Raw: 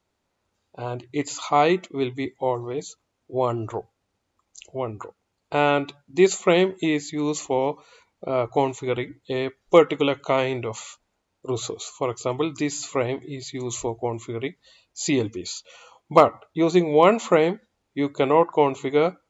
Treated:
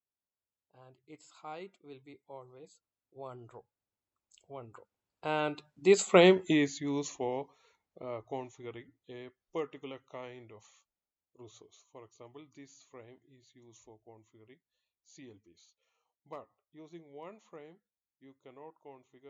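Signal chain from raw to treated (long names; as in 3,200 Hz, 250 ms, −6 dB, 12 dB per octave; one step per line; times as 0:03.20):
source passing by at 0:06.30, 18 m/s, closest 5.7 metres
level −2 dB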